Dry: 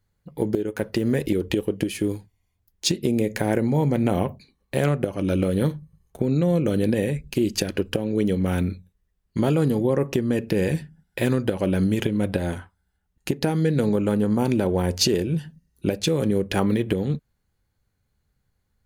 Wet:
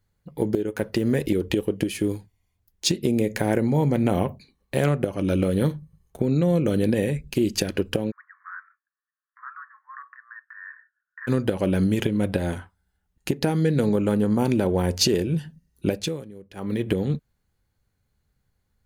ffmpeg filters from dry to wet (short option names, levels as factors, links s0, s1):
-filter_complex "[0:a]asplit=3[s0][s1][s2];[s0]afade=t=out:st=8.1:d=0.02[s3];[s1]asuperpass=centerf=1400:order=12:qfactor=1.8,afade=t=in:st=8.1:d=0.02,afade=t=out:st=11.27:d=0.02[s4];[s2]afade=t=in:st=11.27:d=0.02[s5];[s3][s4][s5]amix=inputs=3:normalize=0,asplit=3[s6][s7][s8];[s6]atrim=end=16.25,asetpts=PTS-STARTPTS,afade=t=out:st=15.91:d=0.34:silence=0.0944061[s9];[s7]atrim=start=16.25:end=16.55,asetpts=PTS-STARTPTS,volume=0.0944[s10];[s8]atrim=start=16.55,asetpts=PTS-STARTPTS,afade=t=in:d=0.34:silence=0.0944061[s11];[s9][s10][s11]concat=n=3:v=0:a=1"